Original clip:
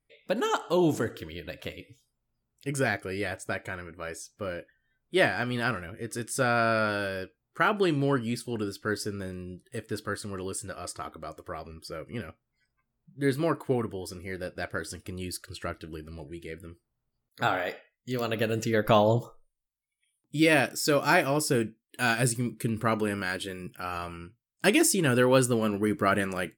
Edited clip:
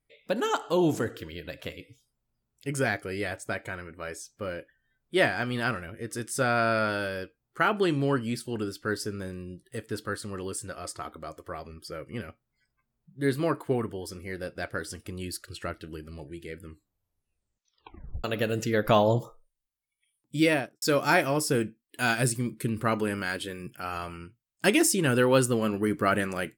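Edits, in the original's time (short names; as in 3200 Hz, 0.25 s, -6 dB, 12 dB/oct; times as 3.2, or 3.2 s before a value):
16.6 tape stop 1.64 s
20.41–20.82 studio fade out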